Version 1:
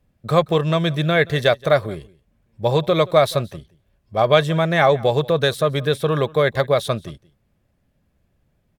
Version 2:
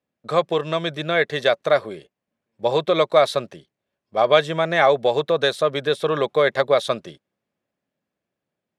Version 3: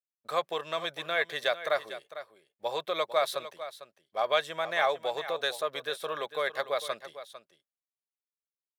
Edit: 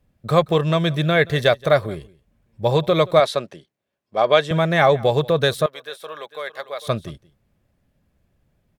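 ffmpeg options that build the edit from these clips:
ffmpeg -i take0.wav -i take1.wav -i take2.wav -filter_complex "[0:a]asplit=3[link_01][link_02][link_03];[link_01]atrim=end=3.202[link_04];[1:a]atrim=start=3.198:end=4.512[link_05];[link_02]atrim=start=4.508:end=5.662[link_06];[2:a]atrim=start=5.658:end=6.872[link_07];[link_03]atrim=start=6.868[link_08];[link_04][link_05]acrossfade=duration=0.004:curve1=hsin:curve2=hsin[link_09];[link_09][link_06]acrossfade=duration=0.004:curve1=hsin:curve2=hsin[link_10];[link_10][link_07]acrossfade=duration=0.004:curve1=hsin:curve2=hsin[link_11];[link_11][link_08]acrossfade=duration=0.004:curve1=hsin:curve2=hsin" out.wav

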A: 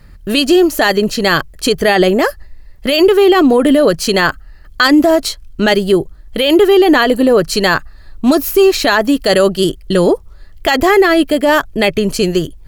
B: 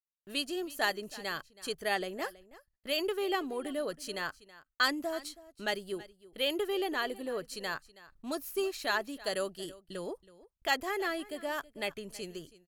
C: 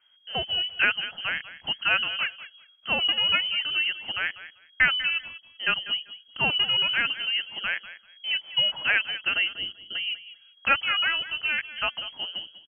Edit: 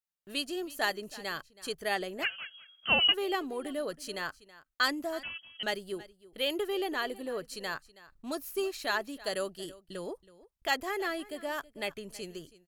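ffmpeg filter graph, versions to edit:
ffmpeg -i take0.wav -i take1.wav -i take2.wav -filter_complex "[2:a]asplit=2[link_01][link_02];[1:a]asplit=3[link_03][link_04][link_05];[link_03]atrim=end=2.26[link_06];[link_01]atrim=start=2.22:end=3.15[link_07];[link_04]atrim=start=3.11:end=5.232[link_08];[link_02]atrim=start=5.228:end=5.632[link_09];[link_05]atrim=start=5.628[link_10];[link_06][link_07]acrossfade=duration=0.04:curve1=tri:curve2=tri[link_11];[link_11][link_08]acrossfade=duration=0.04:curve1=tri:curve2=tri[link_12];[link_12][link_09]acrossfade=duration=0.004:curve1=hsin:curve2=hsin[link_13];[link_13][link_10]acrossfade=duration=0.004:curve1=hsin:curve2=hsin" out.wav

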